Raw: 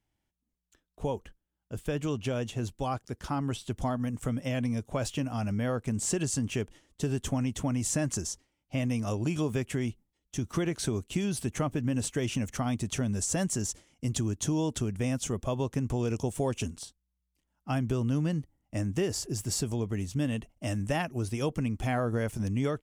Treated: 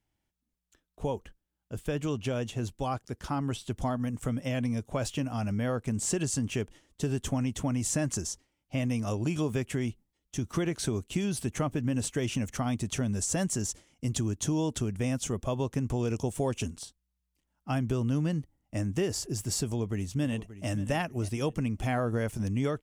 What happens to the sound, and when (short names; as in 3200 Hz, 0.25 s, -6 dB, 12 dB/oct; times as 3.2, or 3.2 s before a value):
19.64–20.7 echo throw 0.58 s, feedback 30%, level -14.5 dB